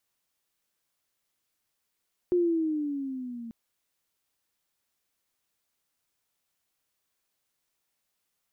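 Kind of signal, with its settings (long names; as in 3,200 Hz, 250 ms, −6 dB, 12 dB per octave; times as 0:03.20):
pitch glide with a swell sine, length 1.19 s, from 360 Hz, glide −8 semitones, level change −17 dB, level −20 dB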